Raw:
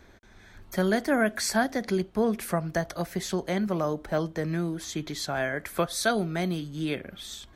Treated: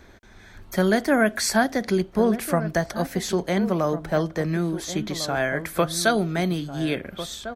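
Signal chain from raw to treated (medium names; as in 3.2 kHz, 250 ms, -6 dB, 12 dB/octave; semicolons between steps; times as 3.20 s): echo from a far wall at 240 m, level -11 dB; trim +4.5 dB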